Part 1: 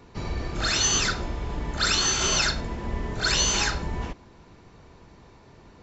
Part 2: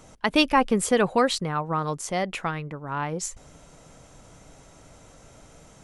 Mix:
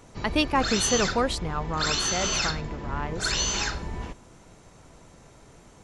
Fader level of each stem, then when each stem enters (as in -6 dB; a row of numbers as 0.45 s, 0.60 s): -3.5 dB, -4.0 dB; 0.00 s, 0.00 s